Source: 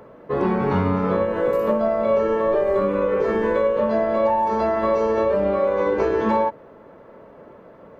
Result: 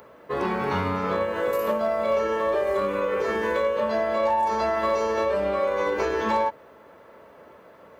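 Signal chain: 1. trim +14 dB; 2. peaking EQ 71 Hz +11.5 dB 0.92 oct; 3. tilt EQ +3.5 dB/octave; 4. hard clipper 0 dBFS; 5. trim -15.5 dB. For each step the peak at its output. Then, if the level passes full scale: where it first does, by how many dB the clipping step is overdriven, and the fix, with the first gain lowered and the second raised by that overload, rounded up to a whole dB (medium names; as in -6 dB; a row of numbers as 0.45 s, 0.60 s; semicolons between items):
+4.5 dBFS, +7.0 dBFS, +3.0 dBFS, 0.0 dBFS, -15.5 dBFS; step 1, 3.0 dB; step 1 +11 dB, step 5 -12.5 dB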